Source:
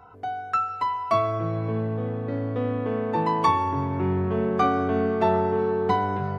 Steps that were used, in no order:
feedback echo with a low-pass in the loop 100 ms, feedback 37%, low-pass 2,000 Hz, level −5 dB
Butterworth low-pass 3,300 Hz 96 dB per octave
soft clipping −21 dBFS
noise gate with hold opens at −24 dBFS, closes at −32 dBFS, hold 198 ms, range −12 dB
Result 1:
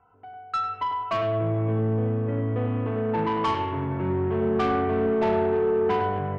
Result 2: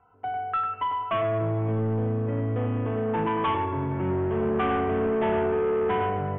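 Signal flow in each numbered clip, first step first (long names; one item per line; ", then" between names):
Butterworth low-pass, then soft clipping, then noise gate with hold, then feedback echo with a low-pass in the loop
noise gate with hold, then feedback echo with a low-pass in the loop, then soft clipping, then Butterworth low-pass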